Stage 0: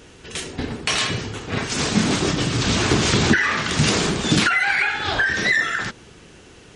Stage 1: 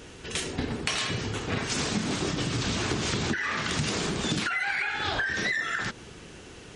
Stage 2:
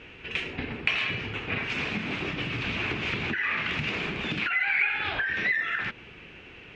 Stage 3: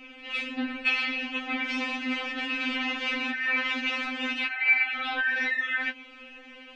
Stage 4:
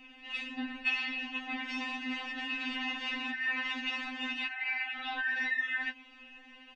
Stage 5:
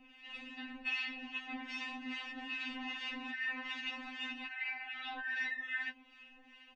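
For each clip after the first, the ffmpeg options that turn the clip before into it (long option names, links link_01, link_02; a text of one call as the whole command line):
ffmpeg -i in.wav -af "acompressor=threshold=-26dB:ratio=6" out.wav
ffmpeg -i in.wav -af "lowpass=frequency=2500:width_type=q:width=4.5,volume=-4.5dB" out.wav
ffmpeg -i in.wav -af "afftfilt=real='re*3.46*eq(mod(b,12),0)':imag='im*3.46*eq(mod(b,12),0)':win_size=2048:overlap=0.75,volume=3.5dB" out.wav
ffmpeg -i in.wav -af "aecho=1:1:1.1:0.63,volume=-7.5dB" out.wav
ffmpeg -i in.wav -filter_complex "[0:a]acrossover=split=1100[link_01][link_02];[link_01]aeval=exprs='val(0)*(1-0.7/2+0.7/2*cos(2*PI*2.5*n/s))':channel_layout=same[link_03];[link_02]aeval=exprs='val(0)*(1-0.7/2-0.7/2*cos(2*PI*2.5*n/s))':channel_layout=same[link_04];[link_03][link_04]amix=inputs=2:normalize=0,volume=-2.5dB" out.wav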